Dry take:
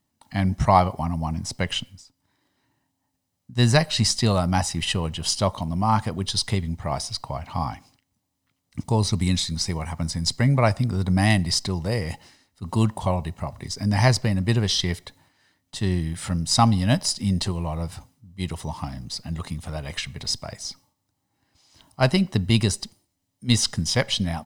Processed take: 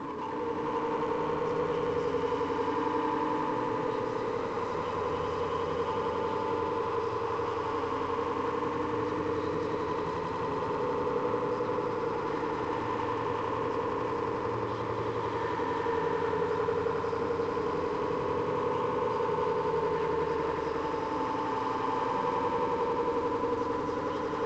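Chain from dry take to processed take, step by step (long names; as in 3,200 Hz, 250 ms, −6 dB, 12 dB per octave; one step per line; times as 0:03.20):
sign of each sample alone
de-essing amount 75%
pair of resonant band-passes 690 Hz, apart 1.1 octaves
feedback delay network reverb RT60 0.39 s, low-frequency decay 1×, high-frequency decay 0.85×, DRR 3.5 dB
brickwall limiter −33.5 dBFS, peak gain reduction 10.5 dB
hard clipping −38.5 dBFS, distortion −15 dB
echo that builds up and dies away 89 ms, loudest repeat 5, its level −4.5 dB
level +6 dB
G.722 64 kbit/s 16,000 Hz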